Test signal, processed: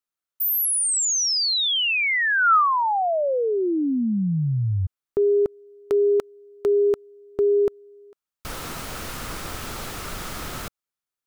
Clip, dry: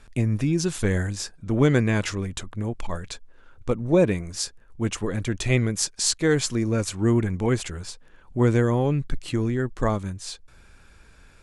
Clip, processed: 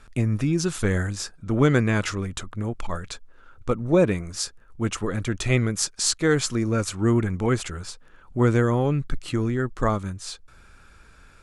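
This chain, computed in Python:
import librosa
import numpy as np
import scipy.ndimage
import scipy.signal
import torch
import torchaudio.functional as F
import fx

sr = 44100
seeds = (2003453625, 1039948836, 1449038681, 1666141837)

y = fx.peak_eq(x, sr, hz=1300.0, db=7.5, octaves=0.33)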